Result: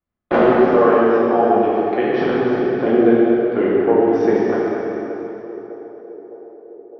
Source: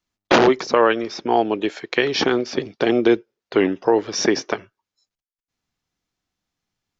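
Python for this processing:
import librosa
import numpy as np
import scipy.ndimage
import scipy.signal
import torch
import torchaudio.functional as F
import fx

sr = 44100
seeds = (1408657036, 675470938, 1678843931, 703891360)

p1 = scipy.signal.sosfilt(scipy.signal.butter(2, 1300.0, 'lowpass', fs=sr, output='sos'), x)
p2 = fx.notch(p1, sr, hz=950.0, q=7.9)
p3 = p2 + fx.echo_banded(p2, sr, ms=608, feedback_pct=74, hz=510.0, wet_db=-17, dry=0)
p4 = fx.rev_plate(p3, sr, seeds[0], rt60_s=3.2, hf_ratio=0.85, predelay_ms=0, drr_db=-7.5)
y = p4 * librosa.db_to_amplitude(-3.5)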